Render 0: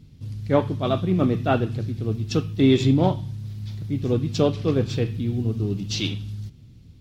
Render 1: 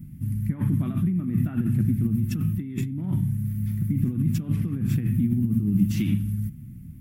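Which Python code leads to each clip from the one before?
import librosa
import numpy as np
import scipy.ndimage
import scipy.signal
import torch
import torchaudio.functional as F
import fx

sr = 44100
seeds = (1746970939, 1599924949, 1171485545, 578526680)

y = fx.over_compress(x, sr, threshold_db=-27.0, ratio=-1.0)
y = fx.curve_eq(y, sr, hz=(100.0, 150.0, 210.0, 330.0, 470.0, 2000.0, 4000.0, 6400.0, 11000.0), db=(0, 6, 9, -4, -20, -1, -22, -12, 13))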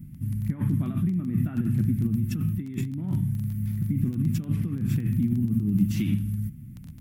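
y = fx.dmg_crackle(x, sr, seeds[0], per_s=11.0, level_db=-32.0)
y = F.gain(torch.from_numpy(y), -1.5).numpy()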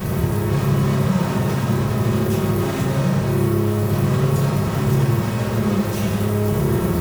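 y = np.sign(x) * np.sqrt(np.mean(np.square(x)))
y = fx.notch_comb(y, sr, f0_hz=290.0)
y = fx.rev_fdn(y, sr, rt60_s=1.3, lf_ratio=1.05, hf_ratio=0.4, size_ms=16.0, drr_db=-9.0)
y = F.gain(torch.from_numpy(y), -3.5).numpy()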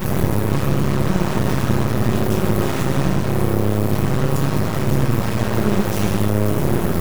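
y = fx.rider(x, sr, range_db=10, speed_s=0.5)
y = np.maximum(y, 0.0)
y = F.gain(torch.from_numpy(y), 4.5).numpy()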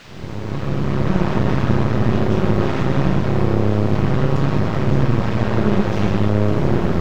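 y = fx.fade_in_head(x, sr, length_s=1.19)
y = fx.dmg_noise_colour(y, sr, seeds[1], colour='white', level_db=-37.0)
y = fx.air_absorb(y, sr, metres=190.0)
y = F.gain(torch.from_numpy(y), 1.5).numpy()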